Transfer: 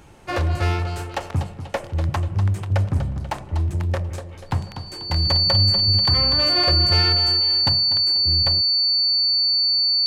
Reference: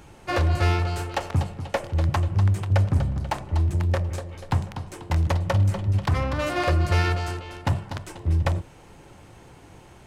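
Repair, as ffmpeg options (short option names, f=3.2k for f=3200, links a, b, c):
-af "bandreject=f=4.5k:w=30,asetnsamples=n=441:p=0,asendcmd='7.69 volume volume 4dB',volume=0dB"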